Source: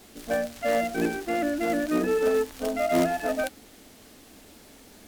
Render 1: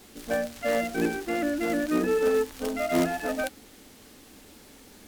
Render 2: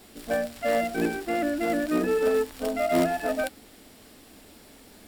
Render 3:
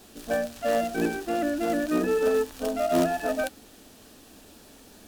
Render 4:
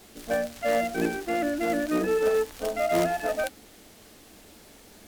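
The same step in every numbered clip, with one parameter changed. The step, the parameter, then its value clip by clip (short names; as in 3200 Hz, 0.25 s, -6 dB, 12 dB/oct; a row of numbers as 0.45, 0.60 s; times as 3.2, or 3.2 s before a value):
notch, frequency: 660, 6300, 2100, 260 Hz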